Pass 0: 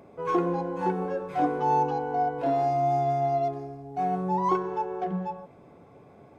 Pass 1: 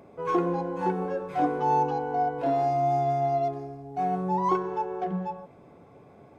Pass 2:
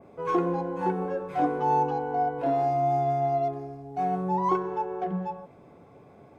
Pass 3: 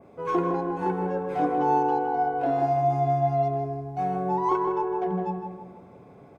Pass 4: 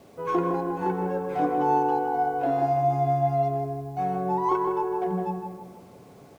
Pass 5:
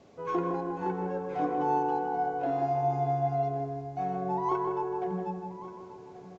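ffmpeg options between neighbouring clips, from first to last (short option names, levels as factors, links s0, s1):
-af anull
-af "adynamicequalizer=threshold=0.00251:dfrequency=5200:dqfactor=0.84:tfrequency=5200:tqfactor=0.84:attack=5:release=100:ratio=0.375:range=2.5:mode=cutabove:tftype=bell"
-filter_complex "[0:a]asplit=2[s0][s1];[s1]adelay=159,lowpass=f=1600:p=1,volume=0.708,asplit=2[s2][s3];[s3]adelay=159,lowpass=f=1600:p=1,volume=0.48,asplit=2[s4][s5];[s5]adelay=159,lowpass=f=1600:p=1,volume=0.48,asplit=2[s6][s7];[s7]adelay=159,lowpass=f=1600:p=1,volume=0.48,asplit=2[s8][s9];[s9]adelay=159,lowpass=f=1600:p=1,volume=0.48,asplit=2[s10][s11];[s11]adelay=159,lowpass=f=1600:p=1,volume=0.48[s12];[s0][s2][s4][s6][s8][s10][s12]amix=inputs=7:normalize=0"
-af "acrusher=bits=9:mix=0:aa=0.000001"
-af "aecho=1:1:1130:0.158,aresample=16000,aresample=44100,volume=0.562"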